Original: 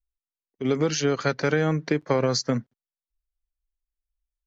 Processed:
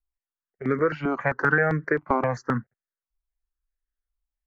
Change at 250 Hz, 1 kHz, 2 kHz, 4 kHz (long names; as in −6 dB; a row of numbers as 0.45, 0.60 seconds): −2.0 dB, +5.0 dB, +7.0 dB, below −15 dB